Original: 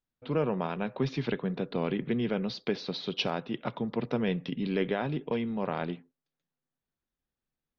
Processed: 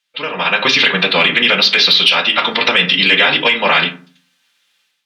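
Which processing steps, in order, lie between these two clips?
band-pass filter 3 kHz, Q 1.6; compression 2:1, threshold -46 dBFS, peak gain reduction 11 dB; tilt EQ +2 dB/octave; reverberation RT60 0.60 s, pre-delay 3 ms, DRR 1.5 dB; time stretch by phase-locked vocoder 0.65×; level rider gain up to 13 dB; saturation -16.5 dBFS, distortion -23 dB; loudness maximiser +25 dB; trim -1 dB

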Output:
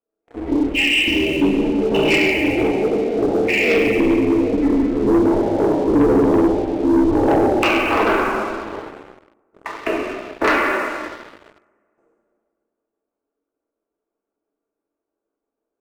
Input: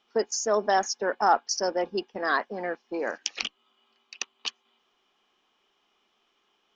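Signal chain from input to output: speed mistake 78 rpm record played at 33 rpm; high-order bell 2.3 kHz -12 dB 2.4 oct; band-passed feedback delay 777 ms, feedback 43%, band-pass 390 Hz, level -21 dB; ring modulator 120 Hz; resonant low shelf 210 Hz -10 dB, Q 1.5; gate with hold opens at -58 dBFS; compressor with a negative ratio -39 dBFS, ratio -1; rotary cabinet horn 6 Hz; plate-style reverb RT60 2 s, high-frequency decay 0.8×, DRR -6 dB; waveshaping leveller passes 3; trim +7.5 dB

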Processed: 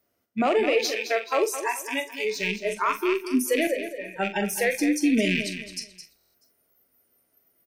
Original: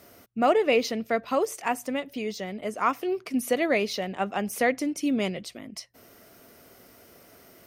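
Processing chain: rattle on loud lows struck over -43 dBFS, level -19 dBFS; 0.78–2.25 s: high-pass 220 Hz 6 dB/octave; spectral noise reduction 27 dB; peak limiter -19.5 dBFS, peak gain reduction 9 dB; 3.67–4.16 s: cascade formant filter e; doubling 44 ms -10.5 dB; feedback delay 215 ms, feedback 30%, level -10.5 dB; reverberation RT60 0.35 s, pre-delay 23 ms, DRR 16.5 dB; buffer glitch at 6.16 s, samples 1024, times 7; trim +5 dB

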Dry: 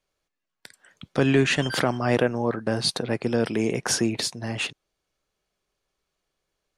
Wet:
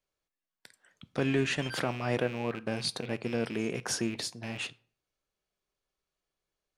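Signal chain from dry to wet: rattle on loud lows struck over -31 dBFS, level -23 dBFS; reverberation RT60 0.45 s, pre-delay 10 ms, DRR 16.5 dB; trim -8.5 dB

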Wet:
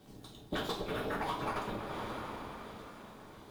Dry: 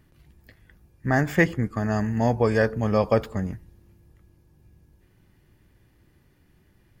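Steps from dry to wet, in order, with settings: CVSD coder 64 kbps; whisper effect; speed mistake 7.5 ips tape played at 15 ips; valve stage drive 15 dB, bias 0.4; two-slope reverb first 0.35 s, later 3.6 s, from -21 dB, DRR -2.5 dB; compression 6:1, threshold -35 dBFS, peak gain reduction 18.5 dB; echo whose repeats swap between lows and highs 349 ms, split 1.1 kHz, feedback 75%, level -12 dB

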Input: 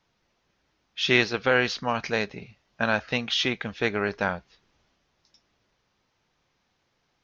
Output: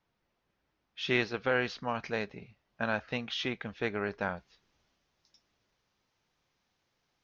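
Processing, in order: treble shelf 4 kHz -9.5 dB, from 4.37 s +3.5 dB; trim -6.5 dB

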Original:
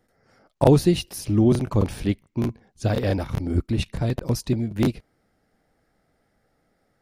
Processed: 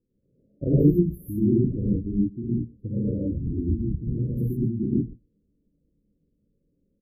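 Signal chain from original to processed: inverse Chebyshev band-stop 1.7–4.7 kHz, stop band 80 dB; spectral gate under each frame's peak -20 dB strong; on a send: delay 124 ms -24 dB; on the sum: gated-style reverb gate 170 ms rising, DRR -7 dB; trim -8.5 dB

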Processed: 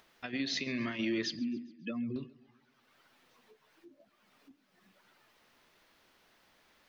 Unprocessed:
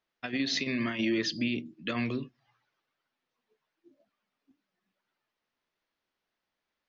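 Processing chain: 1.39–2.16 s: spectral contrast enhancement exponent 2.4; upward compressor, threshold -43 dBFS; modulated delay 137 ms, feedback 50%, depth 60 cents, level -21 dB; trim -4.5 dB

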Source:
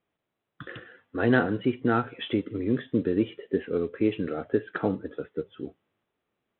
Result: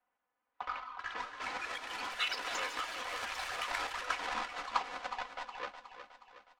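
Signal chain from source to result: square wave that keeps the level; level-controlled noise filter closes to 2.4 kHz, open at -20.5 dBFS; comb 4.1 ms, depth 100%; compressor with a negative ratio -25 dBFS, ratio -1; ladder high-pass 1.1 kHz, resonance 35%; frequency shift -470 Hz; distance through air 130 m; feedback delay 365 ms, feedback 50%, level -10 dB; ever faster or slower copies 539 ms, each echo +5 st, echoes 3; trim -1.5 dB

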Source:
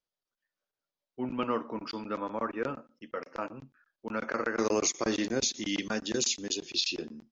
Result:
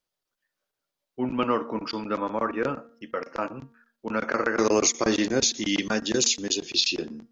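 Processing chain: de-hum 232 Hz, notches 8; trim +6.5 dB

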